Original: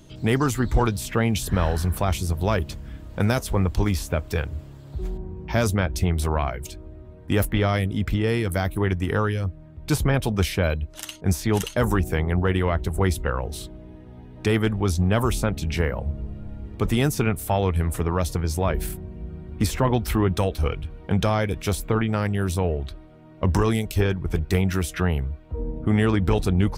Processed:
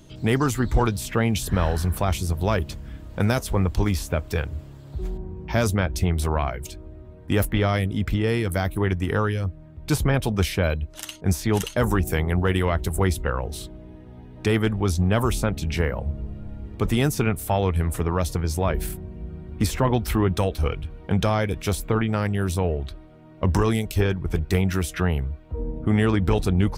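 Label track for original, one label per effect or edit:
12.070000	13.040000	high shelf 5100 Hz +10.5 dB

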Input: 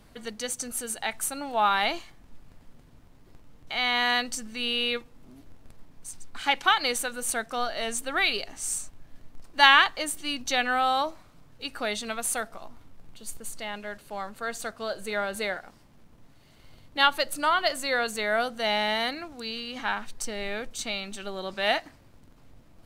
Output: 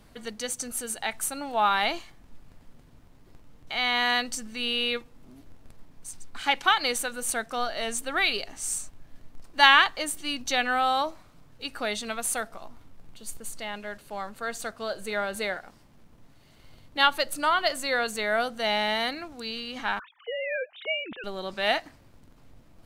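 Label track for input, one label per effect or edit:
19.990000	21.240000	sine-wave speech

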